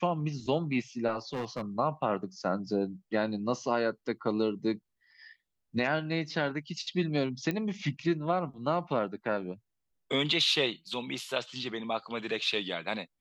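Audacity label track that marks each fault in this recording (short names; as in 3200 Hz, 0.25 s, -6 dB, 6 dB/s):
1.330000	1.620000	clipped -30 dBFS
7.510000	7.510000	pop -19 dBFS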